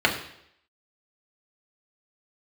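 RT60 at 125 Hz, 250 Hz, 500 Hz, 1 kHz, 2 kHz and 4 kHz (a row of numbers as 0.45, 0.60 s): 0.65, 0.70, 0.75, 0.70, 0.75, 0.75 s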